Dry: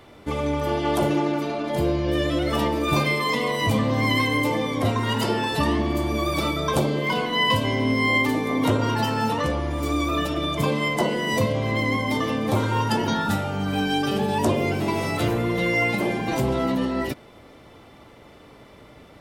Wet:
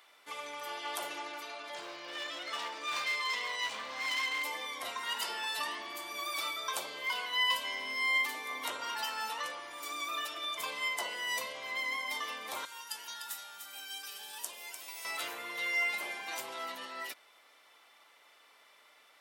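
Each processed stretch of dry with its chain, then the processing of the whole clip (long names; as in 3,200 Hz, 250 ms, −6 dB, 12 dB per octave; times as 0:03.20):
0:01.74–0:04.44: low-pass filter 7,200 Hz 24 dB per octave + hard clipping −19 dBFS
0:12.65–0:15.05: first-order pre-emphasis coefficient 0.8 + single-tap delay 298 ms −7.5 dB
whole clip: high-pass filter 1,200 Hz 12 dB per octave; high-shelf EQ 6,500 Hz +4.5 dB; level −7 dB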